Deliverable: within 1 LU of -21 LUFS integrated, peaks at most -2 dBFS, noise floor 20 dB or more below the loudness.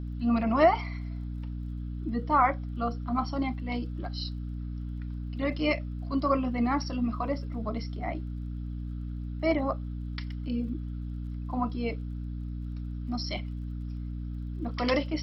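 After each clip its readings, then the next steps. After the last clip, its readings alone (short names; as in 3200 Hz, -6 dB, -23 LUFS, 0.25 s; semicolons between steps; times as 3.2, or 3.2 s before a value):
ticks 28/s; hum 60 Hz; harmonics up to 300 Hz; hum level -33 dBFS; loudness -31.5 LUFS; peak -10.0 dBFS; loudness target -21.0 LUFS
-> de-click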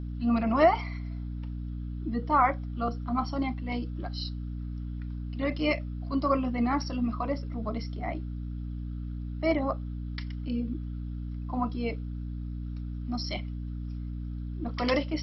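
ticks 0/s; hum 60 Hz; harmonics up to 300 Hz; hum level -33 dBFS
-> notches 60/120/180/240/300 Hz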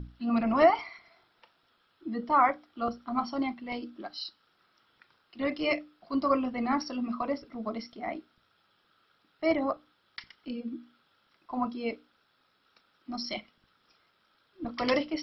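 hum none; loudness -31.0 LUFS; peak -10.5 dBFS; loudness target -21.0 LUFS
-> gain +10 dB; limiter -2 dBFS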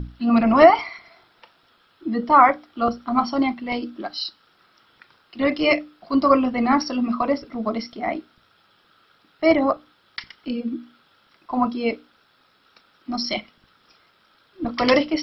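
loudness -21.0 LUFS; peak -2.0 dBFS; noise floor -61 dBFS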